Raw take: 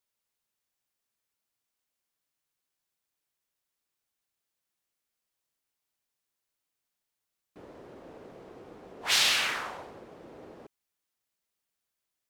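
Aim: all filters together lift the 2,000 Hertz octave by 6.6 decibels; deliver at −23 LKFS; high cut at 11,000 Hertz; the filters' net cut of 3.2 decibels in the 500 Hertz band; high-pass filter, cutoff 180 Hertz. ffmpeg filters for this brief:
ffmpeg -i in.wav -af "highpass=180,lowpass=11000,equalizer=frequency=500:width_type=o:gain=-4.5,equalizer=frequency=2000:width_type=o:gain=8.5,volume=-1dB" out.wav

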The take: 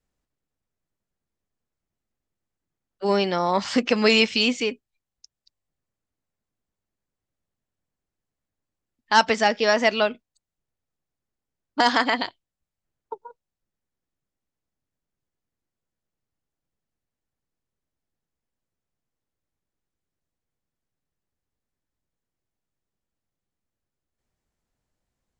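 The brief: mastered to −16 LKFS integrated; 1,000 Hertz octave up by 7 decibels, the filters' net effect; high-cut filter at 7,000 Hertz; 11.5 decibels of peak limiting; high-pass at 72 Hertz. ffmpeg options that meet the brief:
ffmpeg -i in.wav -af "highpass=72,lowpass=7000,equalizer=frequency=1000:width_type=o:gain=8.5,volume=8dB,alimiter=limit=-3dB:level=0:latency=1" out.wav

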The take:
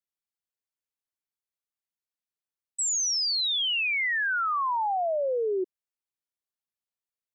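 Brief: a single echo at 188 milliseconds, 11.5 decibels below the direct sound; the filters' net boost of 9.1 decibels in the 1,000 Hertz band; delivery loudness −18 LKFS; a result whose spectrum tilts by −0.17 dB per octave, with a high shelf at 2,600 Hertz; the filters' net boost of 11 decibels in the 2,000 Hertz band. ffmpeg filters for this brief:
ffmpeg -i in.wav -af "equalizer=frequency=1000:width_type=o:gain=8,equalizer=frequency=2000:width_type=o:gain=9,highshelf=frequency=2600:gain=5,aecho=1:1:188:0.266,volume=-1dB" out.wav

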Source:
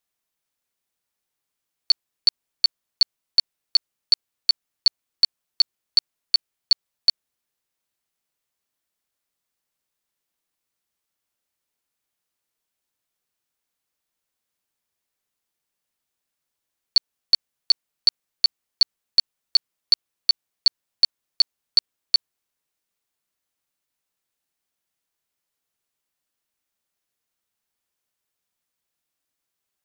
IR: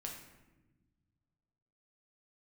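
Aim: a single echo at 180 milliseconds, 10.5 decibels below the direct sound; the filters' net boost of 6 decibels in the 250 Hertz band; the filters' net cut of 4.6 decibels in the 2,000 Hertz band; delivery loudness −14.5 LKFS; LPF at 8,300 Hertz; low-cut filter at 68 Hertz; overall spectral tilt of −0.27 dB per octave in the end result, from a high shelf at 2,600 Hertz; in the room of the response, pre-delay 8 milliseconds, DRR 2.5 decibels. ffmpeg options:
-filter_complex "[0:a]highpass=68,lowpass=8300,equalizer=frequency=250:width_type=o:gain=8,equalizer=frequency=2000:width_type=o:gain=-4,highshelf=frequency=2600:gain=-4,aecho=1:1:180:0.299,asplit=2[link_01][link_02];[1:a]atrim=start_sample=2205,adelay=8[link_03];[link_02][link_03]afir=irnorm=-1:irlink=0,volume=-0.5dB[link_04];[link_01][link_04]amix=inputs=2:normalize=0,volume=10.5dB"

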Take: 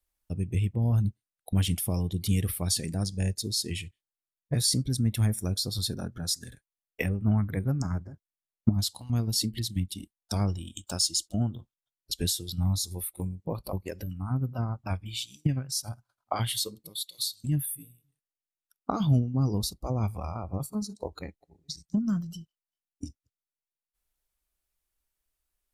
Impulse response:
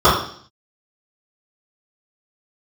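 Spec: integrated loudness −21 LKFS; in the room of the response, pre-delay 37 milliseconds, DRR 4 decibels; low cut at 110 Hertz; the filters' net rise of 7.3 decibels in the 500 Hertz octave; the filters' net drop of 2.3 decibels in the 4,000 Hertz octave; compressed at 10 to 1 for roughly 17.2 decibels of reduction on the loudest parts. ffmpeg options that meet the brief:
-filter_complex "[0:a]highpass=110,equalizer=frequency=500:width_type=o:gain=9,equalizer=frequency=4000:width_type=o:gain=-3,acompressor=threshold=-34dB:ratio=10,asplit=2[link_01][link_02];[1:a]atrim=start_sample=2205,adelay=37[link_03];[link_02][link_03]afir=irnorm=-1:irlink=0,volume=-32.5dB[link_04];[link_01][link_04]amix=inputs=2:normalize=0,volume=17dB"

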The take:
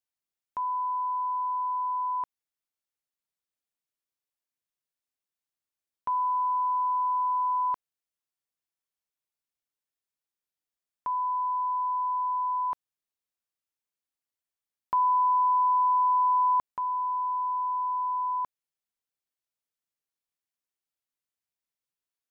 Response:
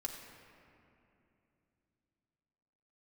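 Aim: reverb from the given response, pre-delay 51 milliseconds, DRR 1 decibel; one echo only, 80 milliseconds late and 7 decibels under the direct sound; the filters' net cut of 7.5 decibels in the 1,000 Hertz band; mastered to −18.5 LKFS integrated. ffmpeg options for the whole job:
-filter_complex "[0:a]equalizer=frequency=1000:width_type=o:gain=-7.5,aecho=1:1:80:0.447,asplit=2[link_01][link_02];[1:a]atrim=start_sample=2205,adelay=51[link_03];[link_02][link_03]afir=irnorm=-1:irlink=0,volume=-0.5dB[link_04];[link_01][link_04]amix=inputs=2:normalize=0,volume=9.5dB"

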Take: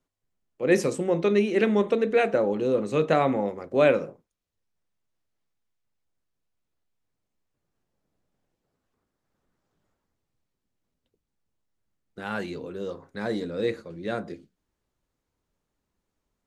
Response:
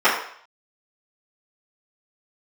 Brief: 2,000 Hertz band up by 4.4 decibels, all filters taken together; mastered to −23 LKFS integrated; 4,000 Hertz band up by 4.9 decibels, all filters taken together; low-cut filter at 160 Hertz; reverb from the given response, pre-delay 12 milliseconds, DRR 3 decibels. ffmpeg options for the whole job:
-filter_complex "[0:a]highpass=160,equalizer=frequency=2000:width_type=o:gain=4.5,equalizer=frequency=4000:width_type=o:gain=4.5,asplit=2[link_01][link_02];[1:a]atrim=start_sample=2205,adelay=12[link_03];[link_02][link_03]afir=irnorm=-1:irlink=0,volume=-26dB[link_04];[link_01][link_04]amix=inputs=2:normalize=0,volume=0.5dB"

